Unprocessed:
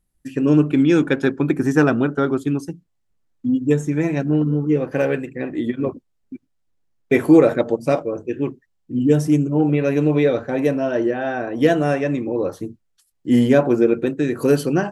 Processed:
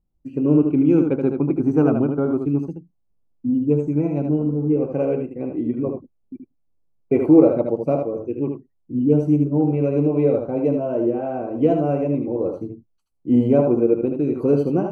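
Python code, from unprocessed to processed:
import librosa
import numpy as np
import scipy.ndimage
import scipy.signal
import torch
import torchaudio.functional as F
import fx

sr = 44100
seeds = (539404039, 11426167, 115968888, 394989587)

p1 = np.convolve(x, np.full(25, 1.0 / 25))[:len(x)]
p2 = p1 + fx.echo_single(p1, sr, ms=77, db=-5.5, dry=0)
y = p2 * librosa.db_to_amplitude(-1.0)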